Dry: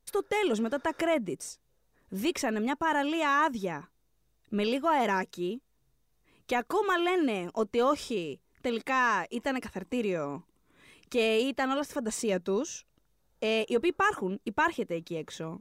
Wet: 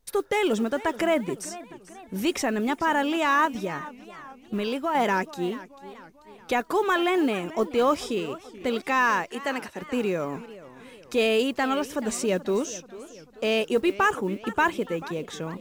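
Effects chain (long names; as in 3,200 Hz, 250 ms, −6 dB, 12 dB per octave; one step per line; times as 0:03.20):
0:03.45–0:04.95: downward compressor 2.5 to 1, threshold −30 dBFS, peak gain reduction 6 dB
0:09.31–0:09.82: high-pass filter 410 Hz 6 dB per octave
noise that follows the level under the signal 33 dB
feedback echo with a swinging delay time 436 ms, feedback 51%, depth 194 cents, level −17 dB
level +4 dB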